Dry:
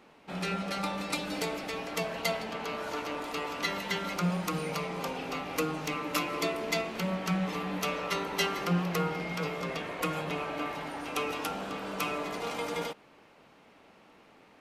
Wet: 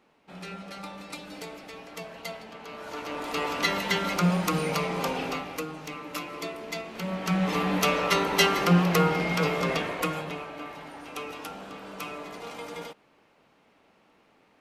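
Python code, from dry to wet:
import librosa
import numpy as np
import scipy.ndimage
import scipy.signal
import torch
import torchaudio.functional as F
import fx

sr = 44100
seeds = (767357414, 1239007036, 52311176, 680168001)

y = fx.gain(x, sr, db=fx.line((2.63, -7.0), (3.43, 6.0), (5.25, 6.0), (5.65, -4.5), (6.83, -4.5), (7.59, 8.0), (9.76, 8.0), (10.51, -4.5)))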